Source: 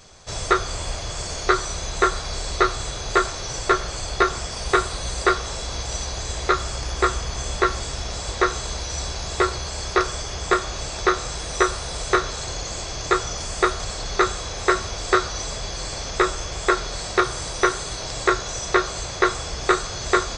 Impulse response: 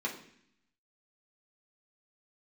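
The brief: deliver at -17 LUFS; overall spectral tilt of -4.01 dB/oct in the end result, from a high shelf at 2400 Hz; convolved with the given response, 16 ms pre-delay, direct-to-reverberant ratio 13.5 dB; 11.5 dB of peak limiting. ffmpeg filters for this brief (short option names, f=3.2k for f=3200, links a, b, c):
-filter_complex "[0:a]highshelf=f=2.4k:g=-8,alimiter=limit=-15.5dB:level=0:latency=1,asplit=2[a][b];[1:a]atrim=start_sample=2205,adelay=16[c];[b][c]afir=irnorm=-1:irlink=0,volume=-18dB[d];[a][d]amix=inputs=2:normalize=0,volume=12.5dB"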